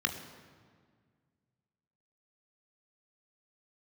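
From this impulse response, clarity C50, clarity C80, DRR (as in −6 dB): 9.0 dB, 10.0 dB, 5.0 dB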